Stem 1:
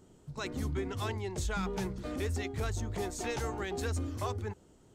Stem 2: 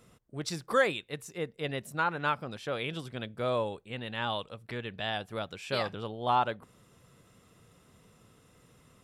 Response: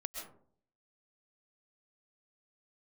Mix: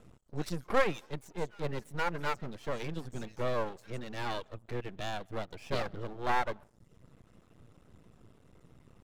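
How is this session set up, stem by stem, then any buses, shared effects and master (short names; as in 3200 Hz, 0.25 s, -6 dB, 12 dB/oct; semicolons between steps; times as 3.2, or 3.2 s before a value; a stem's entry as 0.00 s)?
-5.5 dB, 0.00 s, no send, HPF 600 Hz; soft clip -30.5 dBFS, distortion -21 dB; auto duck -7 dB, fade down 1.00 s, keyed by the second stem
+0.5 dB, 0.00 s, send -13.5 dB, tilt -2.5 dB/oct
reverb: on, RT60 0.55 s, pre-delay 90 ms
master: reverb removal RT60 0.71 s; half-wave rectifier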